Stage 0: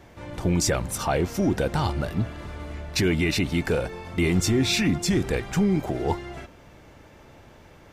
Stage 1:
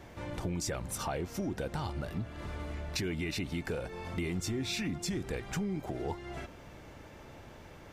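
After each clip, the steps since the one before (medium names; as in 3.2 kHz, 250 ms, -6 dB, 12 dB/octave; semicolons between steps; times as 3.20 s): compression 3:1, threshold -35 dBFS, peak gain reduction 13 dB; trim -1 dB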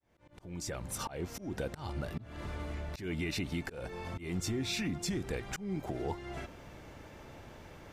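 fade-in on the opening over 1.08 s; slow attack 162 ms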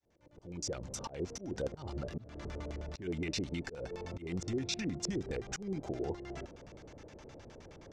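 LFO low-pass square 9.6 Hz 480–6100 Hz; trim -3 dB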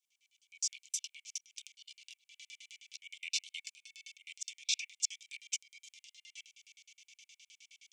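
rippled Chebyshev high-pass 2.2 kHz, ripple 6 dB; trim +8.5 dB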